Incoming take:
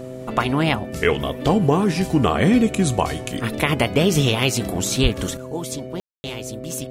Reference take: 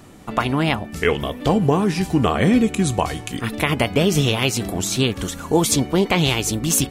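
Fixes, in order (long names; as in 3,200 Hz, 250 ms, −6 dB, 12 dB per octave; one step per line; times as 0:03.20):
hum removal 128.3 Hz, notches 5
0:05.02–0:05.14: high-pass filter 140 Hz 24 dB per octave
ambience match 0:06.00–0:06.24
level 0 dB, from 0:05.37 +12 dB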